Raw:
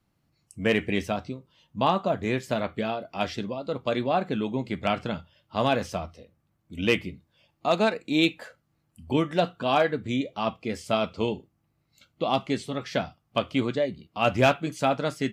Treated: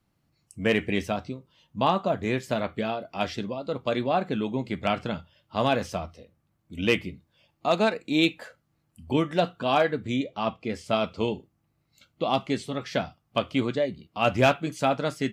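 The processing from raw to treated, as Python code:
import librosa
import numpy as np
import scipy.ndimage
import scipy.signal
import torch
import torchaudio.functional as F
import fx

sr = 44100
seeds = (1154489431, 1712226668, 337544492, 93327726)

y = fx.high_shelf(x, sr, hz=7600.0, db=-8.5, at=(10.24, 10.93))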